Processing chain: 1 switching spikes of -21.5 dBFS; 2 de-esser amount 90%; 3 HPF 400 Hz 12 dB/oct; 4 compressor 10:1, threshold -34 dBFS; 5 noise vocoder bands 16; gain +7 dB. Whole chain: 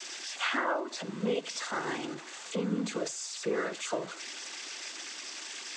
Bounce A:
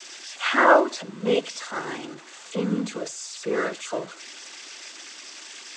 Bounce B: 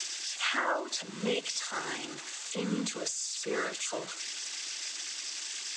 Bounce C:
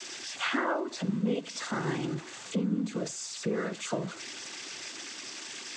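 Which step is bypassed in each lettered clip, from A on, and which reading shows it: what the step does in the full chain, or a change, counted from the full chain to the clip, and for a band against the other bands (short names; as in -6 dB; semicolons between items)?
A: 4, mean gain reduction 2.5 dB; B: 2, momentary loudness spread change -2 LU; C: 3, 125 Hz band +8.0 dB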